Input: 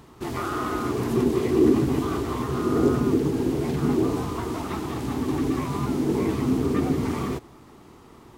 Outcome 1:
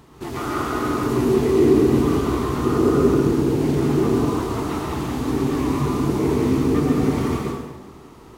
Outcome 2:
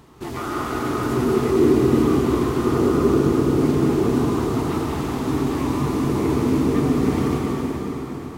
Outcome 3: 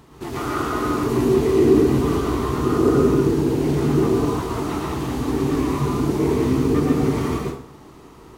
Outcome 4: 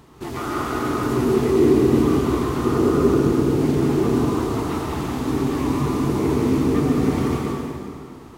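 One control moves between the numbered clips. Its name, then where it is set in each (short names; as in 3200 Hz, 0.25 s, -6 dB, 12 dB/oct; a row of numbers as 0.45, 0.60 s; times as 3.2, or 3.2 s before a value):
plate-style reverb, RT60: 1.2, 5.2, 0.54, 2.4 s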